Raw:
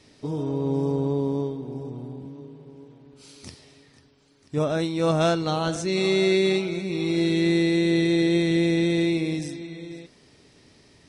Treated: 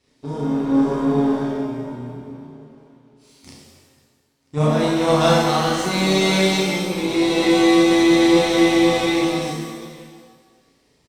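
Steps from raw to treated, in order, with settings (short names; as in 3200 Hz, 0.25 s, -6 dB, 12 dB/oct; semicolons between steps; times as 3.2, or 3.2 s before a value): power-law curve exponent 1.4; doubler 33 ms -2 dB; shimmer reverb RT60 1.3 s, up +7 st, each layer -8 dB, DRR -2.5 dB; gain +3 dB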